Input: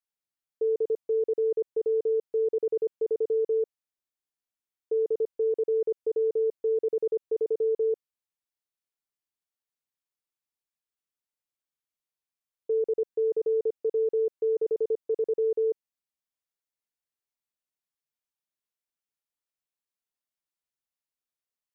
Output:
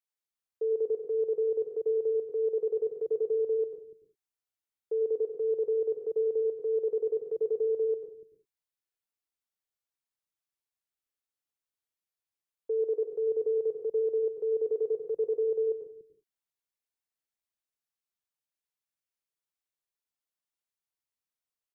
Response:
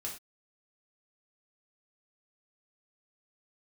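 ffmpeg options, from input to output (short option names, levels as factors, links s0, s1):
-filter_complex "[0:a]acrossover=split=240[s0][s1];[s0]adelay=290[s2];[s2][s1]amix=inputs=2:normalize=0,asplit=2[s3][s4];[1:a]atrim=start_sample=2205,adelay=92[s5];[s4][s5]afir=irnorm=-1:irlink=0,volume=0.501[s6];[s3][s6]amix=inputs=2:normalize=0,volume=0.708"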